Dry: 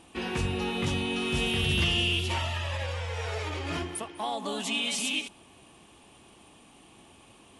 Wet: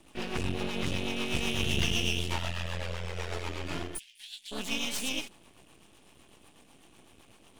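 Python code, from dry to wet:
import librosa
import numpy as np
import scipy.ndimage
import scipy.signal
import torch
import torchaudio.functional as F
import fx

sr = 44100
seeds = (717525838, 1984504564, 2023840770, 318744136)

y = fx.rotary(x, sr, hz=8.0)
y = np.maximum(y, 0.0)
y = fx.cheby2_highpass(y, sr, hz=1300.0, order=4, stop_db=40, at=(3.97, 4.51), fade=0.02)
y = F.gain(torch.from_numpy(y), 3.0).numpy()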